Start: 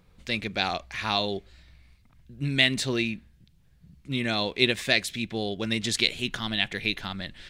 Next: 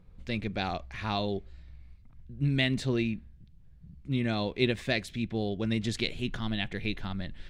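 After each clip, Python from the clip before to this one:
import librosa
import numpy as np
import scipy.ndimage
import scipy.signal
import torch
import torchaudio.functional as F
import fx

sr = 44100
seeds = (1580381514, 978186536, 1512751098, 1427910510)

y = fx.tilt_eq(x, sr, slope=-2.5)
y = y * librosa.db_to_amplitude(-5.0)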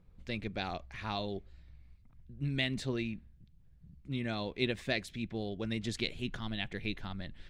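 y = fx.hpss(x, sr, part='percussive', gain_db=4)
y = y * librosa.db_to_amplitude(-7.5)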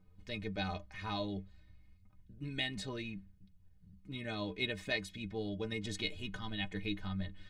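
y = fx.stiff_resonator(x, sr, f0_hz=91.0, decay_s=0.22, stiffness=0.03)
y = y * librosa.db_to_amplitude(6.0)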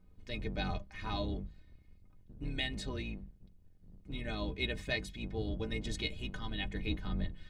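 y = fx.octave_divider(x, sr, octaves=2, level_db=4.0)
y = fx.hum_notches(y, sr, base_hz=50, count=4)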